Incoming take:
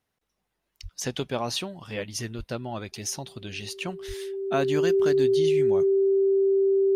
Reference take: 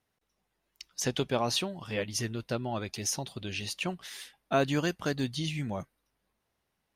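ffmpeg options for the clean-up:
-filter_complex "[0:a]bandreject=f=390:w=30,asplit=3[s0][s1][s2];[s0]afade=t=out:st=0.82:d=0.02[s3];[s1]highpass=f=140:w=0.5412,highpass=f=140:w=1.3066,afade=t=in:st=0.82:d=0.02,afade=t=out:st=0.94:d=0.02[s4];[s2]afade=t=in:st=0.94:d=0.02[s5];[s3][s4][s5]amix=inputs=3:normalize=0,asplit=3[s6][s7][s8];[s6]afade=t=out:st=2.37:d=0.02[s9];[s7]highpass=f=140:w=0.5412,highpass=f=140:w=1.3066,afade=t=in:st=2.37:d=0.02,afade=t=out:st=2.49:d=0.02[s10];[s8]afade=t=in:st=2.49:d=0.02[s11];[s9][s10][s11]amix=inputs=3:normalize=0,asplit=3[s12][s13][s14];[s12]afade=t=out:st=4.07:d=0.02[s15];[s13]highpass=f=140:w=0.5412,highpass=f=140:w=1.3066,afade=t=in:st=4.07:d=0.02,afade=t=out:st=4.19:d=0.02[s16];[s14]afade=t=in:st=4.19:d=0.02[s17];[s15][s16][s17]amix=inputs=3:normalize=0"

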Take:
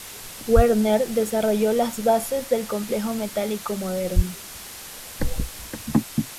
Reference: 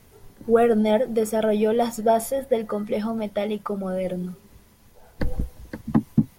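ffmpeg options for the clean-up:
-filter_complex "[0:a]asplit=3[s0][s1][s2];[s0]afade=t=out:st=0.55:d=0.02[s3];[s1]highpass=f=140:w=0.5412,highpass=f=140:w=1.3066,afade=t=in:st=0.55:d=0.02,afade=t=out:st=0.67:d=0.02[s4];[s2]afade=t=in:st=0.67:d=0.02[s5];[s3][s4][s5]amix=inputs=3:normalize=0,asplit=3[s6][s7][s8];[s6]afade=t=out:st=4.15:d=0.02[s9];[s7]highpass=f=140:w=0.5412,highpass=f=140:w=1.3066,afade=t=in:st=4.15:d=0.02,afade=t=out:st=4.27:d=0.02[s10];[s8]afade=t=in:st=4.27:d=0.02[s11];[s9][s10][s11]amix=inputs=3:normalize=0,afwtdn=0.014,asetnsamples=n=441:p=0,asendcmd='6.03 volume volume 5dB',volume=1"

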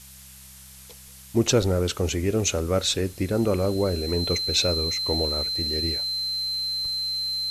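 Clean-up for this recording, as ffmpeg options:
-af "adeclick=t=4,bandreject=f=65.7:t=h:w=4,bandreject=f=131.4:t=h:w=4,bandreject=f=197.1:t=h:w=4,bandreject=f=4100:w=30,afftdn=nr=25:nf=-46"

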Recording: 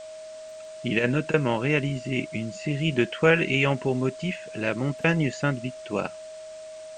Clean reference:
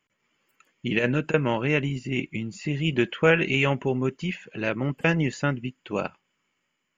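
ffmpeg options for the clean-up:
-af "bandreject=f=630:w=30,afwtdn=0.0035"

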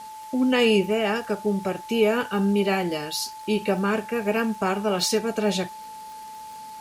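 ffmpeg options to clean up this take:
-af "adeclick=t=4,bandreject=f=870:w=30,afwtdn=0.0035"

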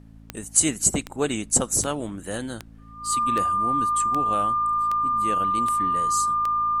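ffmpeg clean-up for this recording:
-af "adeclick=t=4,bandreject=f=55:t=h:w=4,bandreject=f=110:t=h:w=4,bandreject=f=165:t=h:w=4,bandreject=f=220:t=h:w=4,bandreject=f=275:t=h:w=4,bandreject=f=1200:w=30,agate=range=0.0891:threshold=0.0141"

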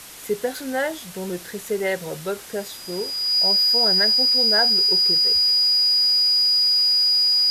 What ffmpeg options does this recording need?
-af "bandreject=f=4900:w=30,afftdn=nr=30:nf=-38"

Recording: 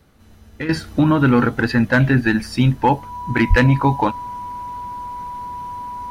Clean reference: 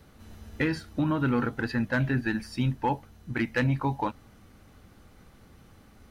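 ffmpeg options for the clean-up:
-filter_complex "[0:a]bandreject=f=980:w=30,asplit=3[s0][s1][s2];[s0]afade=t=out:st=3.49:d=0.02[s3];[s1]highpass=f=140:w=0.5412,highpass=f=140:w=1.3066,afade=t=in:st=3.49:d=0.02,afade=t=out:st=3.61:d=0.02[s4];[s2]afade=t=in:st=3.61:d=0.02[s5];[s3][s4][s5]amix=inputs=3:normalize=0,asetnsamples=n=441:p=0,asendcmd='0.69 volume volume -11.5dB',volume=1"

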